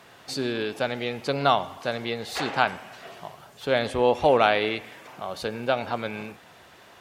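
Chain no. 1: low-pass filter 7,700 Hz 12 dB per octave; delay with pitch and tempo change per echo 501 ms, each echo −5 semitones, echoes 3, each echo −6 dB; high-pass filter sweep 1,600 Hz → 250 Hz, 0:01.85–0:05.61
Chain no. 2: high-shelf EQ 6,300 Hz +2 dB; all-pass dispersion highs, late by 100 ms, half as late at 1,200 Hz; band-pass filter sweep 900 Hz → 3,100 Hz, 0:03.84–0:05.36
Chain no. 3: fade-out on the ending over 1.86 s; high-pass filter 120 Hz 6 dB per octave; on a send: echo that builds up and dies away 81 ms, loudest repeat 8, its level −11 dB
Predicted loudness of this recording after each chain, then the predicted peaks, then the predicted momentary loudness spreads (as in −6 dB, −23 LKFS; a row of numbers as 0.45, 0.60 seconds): −22.0, −33.0, −23.0 LKFS; −3.0, −13.5, −3.5 dBFS; 18, 19, 9 LU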